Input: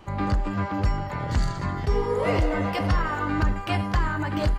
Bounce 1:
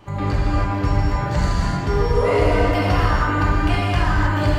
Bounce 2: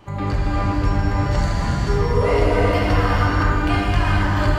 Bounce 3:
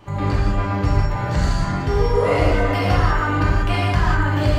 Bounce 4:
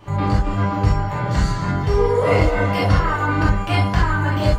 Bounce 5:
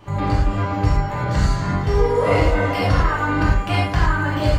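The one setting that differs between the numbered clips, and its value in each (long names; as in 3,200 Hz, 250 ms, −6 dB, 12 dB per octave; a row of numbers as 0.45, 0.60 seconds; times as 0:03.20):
reverb whose tail is shaped and stops, gate: 340, 530, 220, 90, 130 milliseconds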